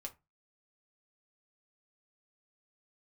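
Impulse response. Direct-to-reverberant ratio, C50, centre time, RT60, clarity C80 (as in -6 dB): 2.0 dB, 18.0 dB, 7 ms, 0.25 s, 26.5 dB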